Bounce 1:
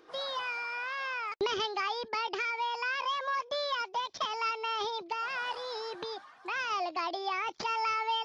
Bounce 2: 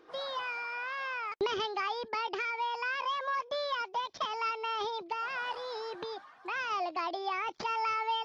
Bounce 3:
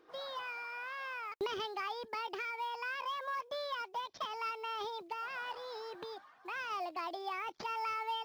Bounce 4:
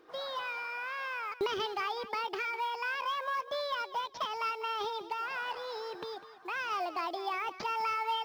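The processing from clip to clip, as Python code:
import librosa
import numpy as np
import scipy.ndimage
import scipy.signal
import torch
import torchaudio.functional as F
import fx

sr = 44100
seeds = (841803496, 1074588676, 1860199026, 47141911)

y1 = fx.high_shelf(x, sr, hz=4100.0, db=-7.5)
y2 = fx.quant_float(y1, sr, bits=4)
y2 = y2 * librosa.db_to_amplitude(-5.5)
y3 = fx.echo_feedback(y2, sr, ms=200, feedback_pct=23, wet_db=-14.5)
y3 = y3 * librosa.db_to_amplitude(4.5)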